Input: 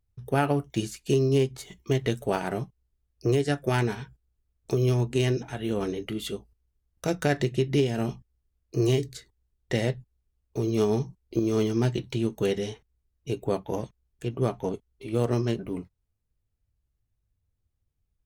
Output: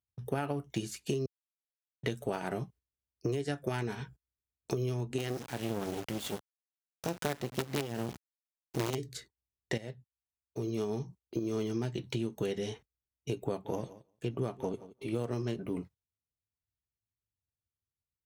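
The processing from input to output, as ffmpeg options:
-filter_complex "[0:a]asettb=1/sr,asplit=3[a][b][c];[a]atrim=end=5.184[d];[b]atrim=start=5.18:end=8.95,asetpts=PTS-STARTPTS,afade=t=in:d=0.004:c=qsin,afade=t=out:st=3.766:d=0.004:c=qsin,acrusher=bits=4:dc=4:mix=0:aa=0.000001[e];[c]atrim=start=8.946[f];[d][e]acrossfade=d=0.004:c1=hsin:c2=qsin[g];[g][f]acrossfade=d=0.004:c1=qsin:c2=hsin,asettb=1/sr,asplit=3[h][i][j];[h]atrim=end=13.434[k];[i]atrim=start=13.43:end=15.56,asetpts=PTS-STARTPTS,afade=t=in:d=0.004:c=qsin,afade=t=out:st=2.126:d=0.004:c=qsin,aecho=1:1:174|348|522:0.0841|0.0303|0.0109,atrim=end_sample=93933[l];[j]atrim=start=15.556[m];[k][l]acrossfade=d=0.004:c1=hsin:c2=qsin[n];[n][m]acrossfade=d=0.004:c1=qsin:c2=hsin,asplit=4[o][p][q][r];[o]atrim=end=1.26,asetpts=PTS-STARTPTS,afade=t=out:st=1.256:d=0.004:c=hsin[s];[p]atrim=start=1.26:end=2.03,asetpts=PTS-STARTPTS,volume=0[t];[q]atrim=start=2.03:end=9.78,asetpts=PTS-STARTPTS,afade=t=in:d=0.004:c=hsin,afade=t=out:st=7.746:d=0.004:c=hsin:silence=0.199526[u];[r]atrim=start=9.78,asetpts=PTS-STARTPTS,afade=t=in:d=2.54:silence=0.199526[v];[s][t][u][v]concat=n=4:v=0:a=1,agate=range=-15dB:threshold=-49dB:ratio=16:detection=peak,highpass=87,acompressor=threshold=-30dB:ratio=6"

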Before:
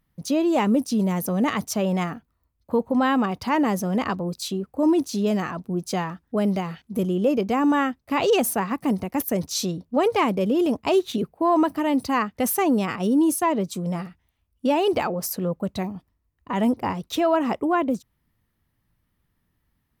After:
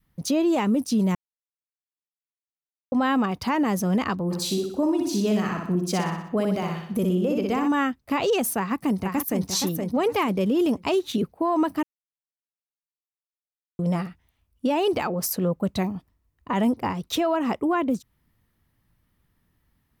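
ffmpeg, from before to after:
-filter_complex "[0:a]asplit=3[a][b][c];[a]afade=t=out:st=4.3:d=0.02[d];[b]aecho=1:1:61|122|183|244|305|366:0.631|0.297|0.139|0.0655|0.0308|0.0145,afade=t=in:st=4.3:d=0.02,afade=t=out:st=7.67:d=0.02[e];[c]afade=t=in:st=7.67:d=0.02[f];[d][e][f]amix=inputs=3:normalize=0,asplit=2[g][h];[h]afade=t=in:st=8.58:d=0.01,afade=t=out:st=9.46:d=0.01,aecho=0:1:470|940|1410|1880:0.473151|0.141945|0.0425836|0.0127751[i];[g][i]amix=inputs=2:normalize=0,asplit=5[j][k][l][m][n];[j]atrim=end=1.15,asetpts=PTS-STARTPTS,afade=t=out:st=1.146:d=0.004:c=hsin[o];[k]atrim=start=1.15:end=2.92,asetpts=PTS-STARTPTS,volume=0[p];[l]atrim=start=2.92:end=11.83,asetpts=PTS-STARTPTS,afade=t=in:d=0.004:c=hsin,afade=t=out:st=8.906:d=0.004:c=hsin[q];[m]atrim=start=11.83:end=13.79,asetpts=PTS-STARTPTS,volume=0[r];[n]atrim=start=13.79,asetpts=PTS-STARTPTS,afade=t=in:d=0.004:c=hsin[s];[o][p][q][r][s]concat=n=5:v=0:a=1,adynamicequalizer=threshold=0.0141:dfrequency=630:dqfactor=1.4:tfrequency=630:tqfactor=1.4:attack=5:release=100:ratio=0.375:range=2.5:mode=cutabove:tftype=bell,alimiter=limit=-18.5dB:level=0:latency=1:release=277,volume=3dB"

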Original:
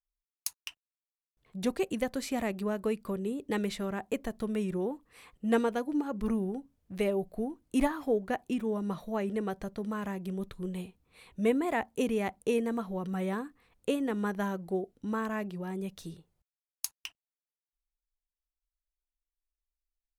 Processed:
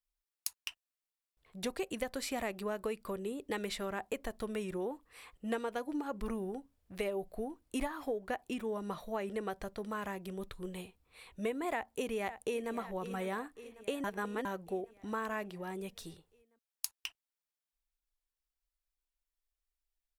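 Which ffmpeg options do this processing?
-filter_complex "[0:a]asplit=2[a][b];[b]afade=t=in:st=11.69:d=0.01,afade=t=out:st=12.73:d=0.01,aecho=0:1:550|1100|1650|2200|2750|3300|3850:0.149624|0.0972553|0.063216|0.0410904|0.0267087|0.0173607|0.0112844[c];[a][c]amix=inputs=2:normalize=0,asplit=3[d][e][f];[d]atrim=end=14.042[g];[e]atrim=start=14.038:end=14.452,asetpts=PTS-STARTPTS,areverse[h];[f]atrim=start=14.448[i];[g][h]acrossfade=d=0.004:c1=hsin:c2=hsin[j];[j][i]acrossfade=d=0.004:c1=hsin:c2=hsin,equalizer=f=180:t=o:w=1.9:g=-9.5,bandreject=f=6.3k:w=18,acompressor=threshold=-33dB:ratio=6,volume=1dB"

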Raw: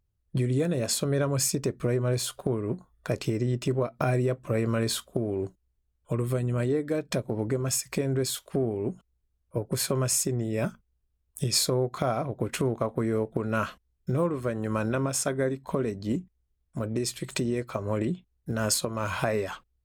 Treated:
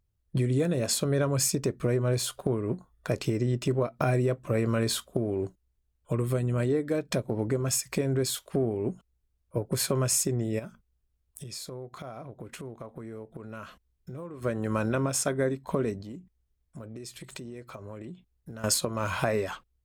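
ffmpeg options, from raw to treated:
-filter_complex "[0:a]asplit=3[a][b][c];[a]afade=t=out:st=10.58:d=0.02[d];[b]acompressor=threshold=-44dB:ratio=2.5:attack=3.2:release=140:knee=1:detection=peak,afade=t=in:st=10.58:d=0.02,afade=t=out:st=14.41:d=0.02[e];[c]afade=t=in:st=14.41:d=0.02[f];[d][e][f]amix=inputs=3:normalize=0,asettb=1/sr,asplit=3[g][h][i];[g]atrim=end=16.014[j];[h]atrim=start=16.01:end=18.64,asetpts=PTS-STARTPTS,afade=t=in:d=0.004:c=qsin,afade=t=out:st=2.626:d=0.004:c=qsin,acompressor=threshold=-42dB:ratio=3:attack=3.2:release=140:knee=1:detection=peak[k];[i]atrim=start=18.636[l];[j][k]acrossfade=d=0.004:c1=hsin:c2=qsin[m];[m][l]acrossfade=d=0.004:c1=qsin:c2=hsin"

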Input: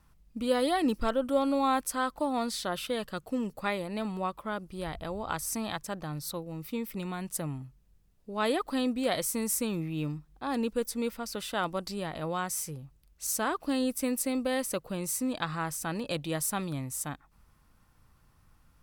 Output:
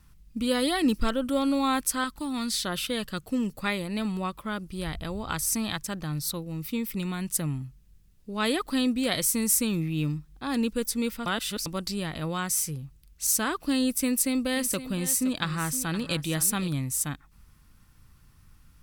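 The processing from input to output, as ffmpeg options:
-filter_complex "[0:a]asettb=1/sr,asplit=3[a][b][c];[a]atrim=end=2.044[d];[b]atrim=start=2.04:end=2.51,asetpts=PTS-STARTPTS,afade=t=in:d=0.004:c=qsin,afade=t=out:st=0.466:d=0.004:c=qsin,equalizer=f=600:t=o:w=1.1:g=-12[e];[c]atrim=start=2.506[f];[d][e]acrossfade=d=0.004:c1=hsin:c2=qsin[g];[g][f]acrossfade=d=0.004:c1=qsin:c2=hsin,asettb=1/sr,asplit=3[h][i][j];[h]atrim=end=14.054[k];[i]atrim=start=14.05:end=16.68,asetpts=PTS-STARTPTS,afade=t=in:d=0.004:c=qsin,afade=t=out:st=2.626:d=0.004:c=qsin,aecho=1:1:517:0.224,atrim=end_sample=115983[l];[j]atrim=start=16.676[m];[k][l]acrossfade=d=0.004:c1=hsin:c2=qsin[n];[n][m]acrossfade=d=0.004:c1=qsin:c2=hsin,asplit=3[o][p][q];[o]atrim=end=11.262[r];[p]atrim=start=11.258:end=11.662,asetpts=PTS-STARTPTS,areverse[s];[q]atrim=start=11.658[t];[r][s]acrossfade=d=0.004:c1=hsin:c2=hsin[u];[u][t]acrossfade=d=0.004:c1=hsin:c2=hsin,equalizer=f=690:t=o:w=1.9:g=-10.5,volume=7.5dB"

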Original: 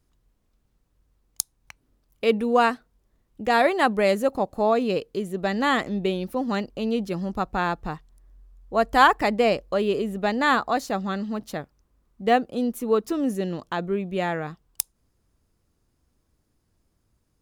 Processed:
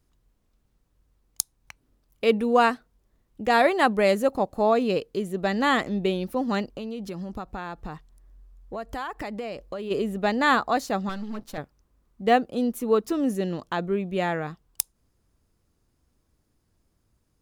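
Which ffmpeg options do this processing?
-filter_complex "[0:a]asplit=3[a][b][c];[a]afade=t=out:st=6.72:d=0.02[d];[b]acompressor=threshold=-30dB:ratio=6:attack=3.2:release=140:knee=1:detection=peak,afade=t=in:st=6.72:d=0.02,afade=t=out:st=9.9:d=0.02[e];[c]afade=t=in:st=9.9:d=0.02[f];[d][e][f]amix=inputs=3:normalize=0,asettb=1/sr,asplit=3[g][h][i];[g]atrim=end=11.094[j];[h]atrim=start=11.09:end=11.58,asetpts=PTS-STARTPTS,afade=t=in:d=0.004:c=qsin,afade=t=out:st=0.486:d=0.004:c=qsin,aeval=exprs='if(lt(val(0),0),0.251*val(0),val(0))':c=same[k];[i]atrim=start=11.576[l];[j][k]acrossfade=d=0.004:c1=hsin:c2=qsin[m];[m][l]acrossfade=d=0.004:c1=qsin:c2=hsin"

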